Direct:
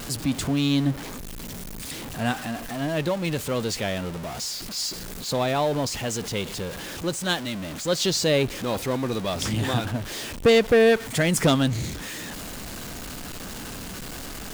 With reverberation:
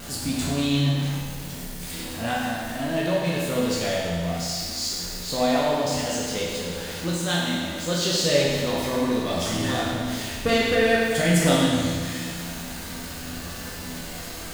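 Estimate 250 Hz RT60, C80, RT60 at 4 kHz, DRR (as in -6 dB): 1.9 s, 1.0 dB, 1.7 s, -5.5 dB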